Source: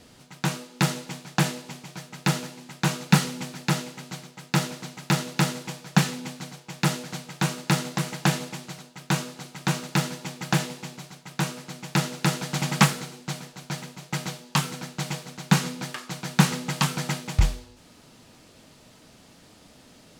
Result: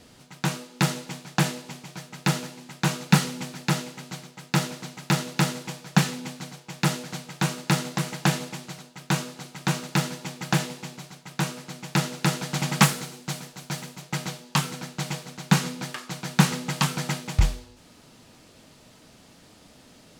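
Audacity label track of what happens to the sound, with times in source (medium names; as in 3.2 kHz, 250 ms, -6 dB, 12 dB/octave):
12.810000	14.020000	treble shelf 7.3 kHz +5.5 dB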